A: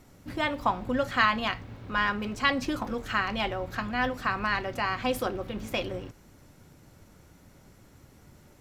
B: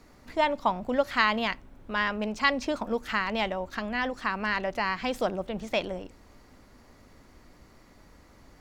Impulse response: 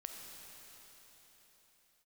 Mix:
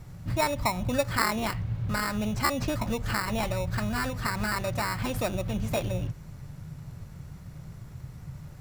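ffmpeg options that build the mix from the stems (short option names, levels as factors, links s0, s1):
-filter_complex "[0:a]lowshelf=f=200:t=q:w=3:g=10,acompressor=threshold=0.0501:ratio=6,volume=1.12[s0];[1:a]acrusher=samples=14:mix=1:aa=0.000001,volume=0.75,asplit=2[s1][s2];[s2]apad=whole_len=379530[s3];[s0][s3]sidechaincompress=threshold=0.0224:ratio=8:attack=8.9:release=117[s4];[s4][s1]amix=inputs=2:normalize=0"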